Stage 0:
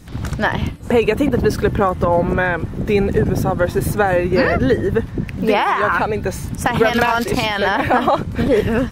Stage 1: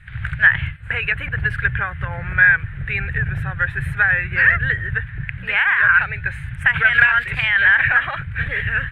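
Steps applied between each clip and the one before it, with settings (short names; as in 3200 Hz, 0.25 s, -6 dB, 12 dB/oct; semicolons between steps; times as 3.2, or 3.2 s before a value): EQ curve 140 Hz 0 dB, 240 Hz -29 dB, 1100 Hz -10 dB, 1600 Hz +13 dB, 2500 Hz +6 dB, 3600 Hz -6 dB, 5700 Hz -30 dB, 8900 Hz -14 dB, 15000 Hz -28 dB; gain -2 dB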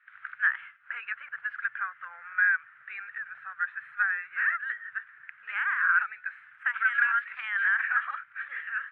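ladder band-pass 1400 Hz, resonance 65%; gain -4 dB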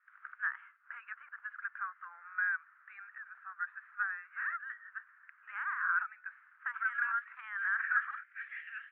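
band-pass sweep 1100 Hz -> 2800 Hz, 7.59–8.73; gain -3 dB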